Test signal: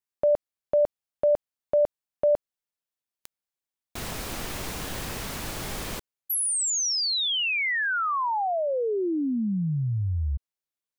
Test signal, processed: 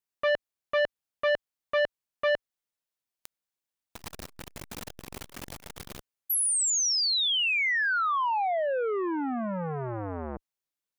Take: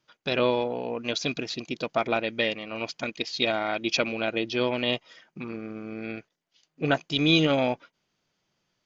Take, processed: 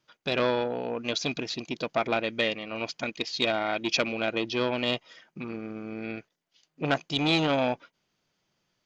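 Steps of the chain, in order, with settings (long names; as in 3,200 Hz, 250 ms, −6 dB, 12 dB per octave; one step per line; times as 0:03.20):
saturating transformer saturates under 1,300 Hz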